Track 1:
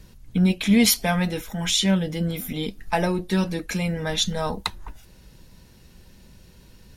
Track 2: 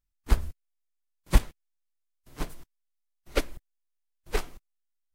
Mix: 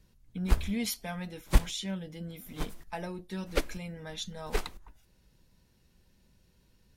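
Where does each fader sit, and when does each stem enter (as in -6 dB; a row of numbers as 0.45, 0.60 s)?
-15.5, -2.5 dB; 0.00, 0.20 s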